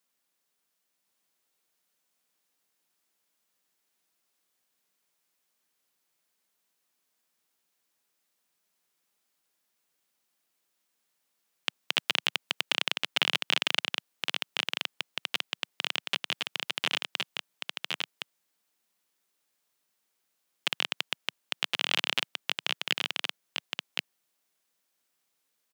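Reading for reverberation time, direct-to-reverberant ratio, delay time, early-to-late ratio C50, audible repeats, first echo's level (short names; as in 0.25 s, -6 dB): none, none, 1.066 s, none, 1, -3.5 dB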